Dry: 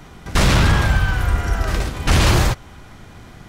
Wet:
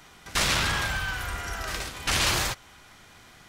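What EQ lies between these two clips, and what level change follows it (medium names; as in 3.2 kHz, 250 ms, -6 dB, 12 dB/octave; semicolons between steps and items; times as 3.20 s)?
tilt shelf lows -4.5 dB, about 1.3 kHz; bass shelf 320 Hz -8 dB; -6.0 dB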